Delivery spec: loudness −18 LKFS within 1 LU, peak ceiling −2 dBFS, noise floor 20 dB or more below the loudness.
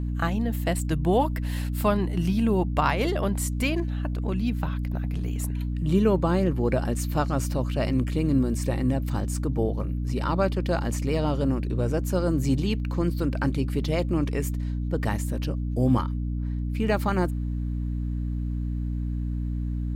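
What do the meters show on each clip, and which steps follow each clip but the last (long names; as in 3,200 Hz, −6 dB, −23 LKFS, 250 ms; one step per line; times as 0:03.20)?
mains hum 60 Hz; hum harmonics up to 300 Hz; level of the hum −25 dBFS; integrated loudness −26.5 LKFS; sample peak −9.0 dBFS; target loudness −18.0 LKFS
→ mains-hum notches 60/120/180/240/300 Hz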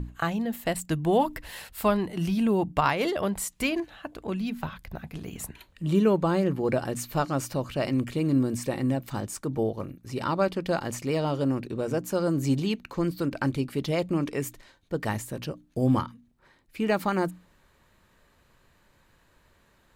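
mains hum none found; integrated loudness −28.0 LKFS; sample peak −9.5 dBFS; target loudness −18.0 LKFS
→ level +10 dB
brickwall limiter −2 dBFS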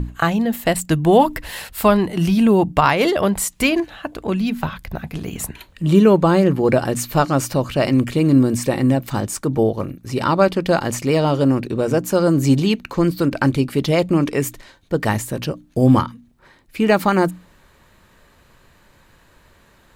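integrated loudness −18.0 LKFS; sample peak −2.0 dBFS; background noise floor −54 dBFS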